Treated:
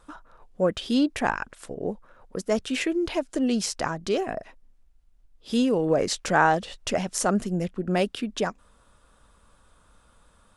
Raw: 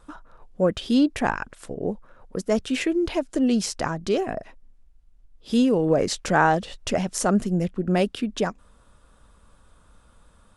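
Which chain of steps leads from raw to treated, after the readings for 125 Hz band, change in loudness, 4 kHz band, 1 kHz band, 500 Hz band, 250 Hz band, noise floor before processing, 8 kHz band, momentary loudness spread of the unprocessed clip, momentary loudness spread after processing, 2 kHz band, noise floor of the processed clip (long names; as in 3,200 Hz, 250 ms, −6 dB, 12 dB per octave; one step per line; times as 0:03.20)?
−4.0 dB, −2.0 dB, 0.0 dB, −1.0 dB, −2.0 dB, −3.5 dB, −57 dBFS, 0.0 dB, 11 LU, 11 LU, 0.0 dB, −60 dBFS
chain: low-shelf EQ 370 Hz −5 dB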